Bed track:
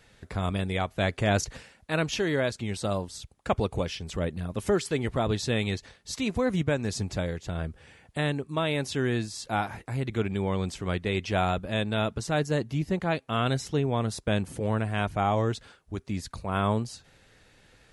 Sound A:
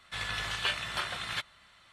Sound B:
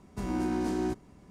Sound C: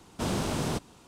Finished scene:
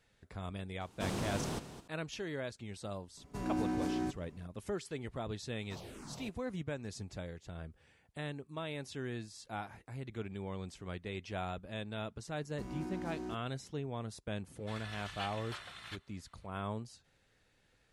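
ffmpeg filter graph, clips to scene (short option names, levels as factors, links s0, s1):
-filter_complex "[3:a]asplit=2[s0][s1];[2:a]asplit=2[s2][s3];[0:a]volume=0.211[s4];[s0]aecho=1:1:213|426:0.251|0.0427[s5];[s2]aecho=1:1:7:0.55[s6];[s1]asplit=2[s7][s8];[s8]afreqshift=-2.5[s9];[s7][s9]amix=inputs=2:normalize=1[s10];[s5]atrim=end=1.07,asetpts=PTS-STARTPTS,volume=0.398,afade=t=in:d=0.004:c=hsin,afade=t=out:st=1.066:d=0.004:c=hsin,adelay=810[s11];[s6]atrim=end=1.3,asetpts=PTS-STARTPTS,volume=0.531,afade=t=in:d=0.004:c=hsin,afade=t=out:st=1.296:d=0.004:c=hsin,adelay=139797S[s12];[s10]atrim=end=1.07,asetpts=PTS-STARTPTS,volume=0.158,afade=t=in:d=0.004:c=hsin,afade=t=out:st=1.066:d=0.004:c=hsin,adelay=5510[s13];[s3]atrim=end=1.3,asetpts=PTS-STARTPTS,volume=0.251,afade=t=in:d=0.004:c=hsin,afade=t=out:st=1.296:d=0.004:c=hsin,adelay=12410[s14];[1:a]atrim=end=1.92,asetpts=PTS-STARTPTS,volume=0.224,afade=t=in:d=0.004:c=hsin,afade=t=out:st=1.916:d=0.004:c=hsin,adelay=14550[s15];[s4][s11][s12][s13][s14][s15]amix=inputs=6:normalize=0"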